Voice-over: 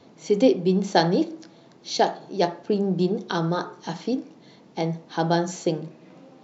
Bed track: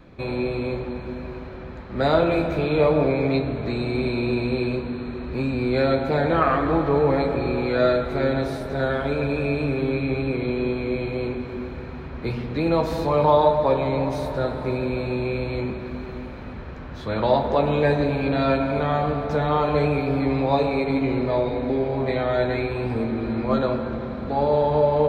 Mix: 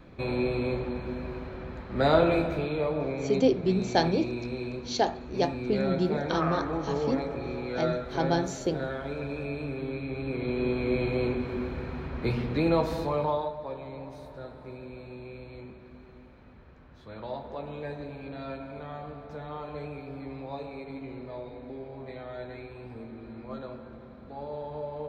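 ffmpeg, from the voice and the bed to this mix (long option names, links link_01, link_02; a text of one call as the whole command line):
ffmpeg -i stem1.wav -i stem2.wav -filter_complex "[0:a]adelay=3000,volume=-5dB[link_01];[1:a]volume=7dB,afade=type=out:start_time=2.26:duration=0.54:silence=0.398107,afade=type=in:start_time=10.13:duration=0.9:silence=0.334965,afade=type=out:start_time=12.44:duration=1.07:silence=0.149624[link_02];[link_01][link_02]amix=inputs=2:normalize=0" out.wav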